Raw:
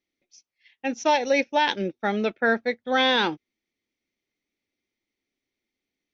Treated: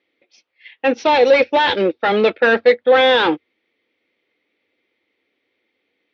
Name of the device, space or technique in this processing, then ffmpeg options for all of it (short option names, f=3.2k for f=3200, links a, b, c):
overdrive pedal into a guitar cabinet: -filter_complex "[0:a]asettb=1/sr,asplit=3[a][b][c];[a]atrim=end=0.984[d];[b]atrim=start=0.98:end=2.75,asetpts=PTS-STARTPTS,afade=t=in:d=0.004:c=qsin,afade=t=out:st=1.766:d=0.004:c=qsin,equalizer=f=4.7k:t=o:w=0.6:g=10[e];[c]atrim=start=2.746[f];[d][e]acrossfade=d=0.004:c1=hsin:c2=qsin[g];[g][f]acrossfade=d=0.004:c1=qsin:c2=hsin,asplit=2[h][i];[i]highpass=f=720:p=1,volume=23dB,asoftclip=type=tanh:threshold=-8.5dB[j];[h][j]amix=inputs=2:normalize=0,lowpass=f=5.7k:p=1,volume=-6dB,highpass=82,equalizer=f=91:t=q:w=4:g=9,equalizer=f=310:t=q:w=4:g=4,equalizer=f=490:t=q:w=4:g=10,lowpass=f=3.6k:w=0.5412,lowpass=f=3.6k:w=1.3066"